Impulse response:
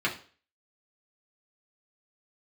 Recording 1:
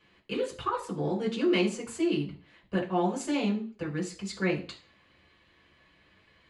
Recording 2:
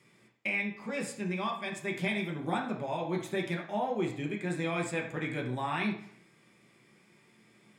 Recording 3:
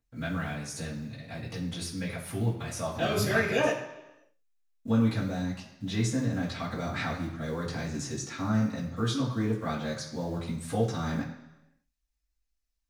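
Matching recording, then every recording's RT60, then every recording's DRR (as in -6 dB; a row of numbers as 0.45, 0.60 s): 1; 0.40, 0.70, 1.0 s; -4.5, -1.0, -10.0 dB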